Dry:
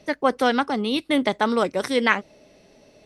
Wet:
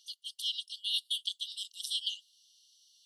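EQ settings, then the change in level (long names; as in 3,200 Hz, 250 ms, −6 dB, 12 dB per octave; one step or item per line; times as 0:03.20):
dynamic equaliser 5,800 Hz, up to −5 dB, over −51 dBFS, Q 2.3
linear-phase brick-wall high-pass 2,800 Hz
0.0 dB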